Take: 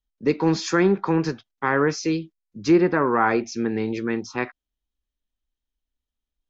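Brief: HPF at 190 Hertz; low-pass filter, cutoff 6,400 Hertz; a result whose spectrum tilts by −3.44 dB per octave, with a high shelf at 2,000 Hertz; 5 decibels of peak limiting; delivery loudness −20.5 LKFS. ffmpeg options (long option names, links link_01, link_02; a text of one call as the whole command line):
ffmpeg -i in.wav -af "highpass=190,lowpass=6400,highshelf=frequency=2000:gain=-8.5,volume=5dB,alimiter=limit=-8.5dB:level=0:latency=1" out.wav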